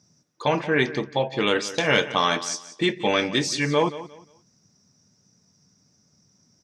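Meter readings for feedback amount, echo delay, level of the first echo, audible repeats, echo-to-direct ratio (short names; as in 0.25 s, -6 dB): 26%, 0.177 s, -15.0 dB, 2, -14.5 dB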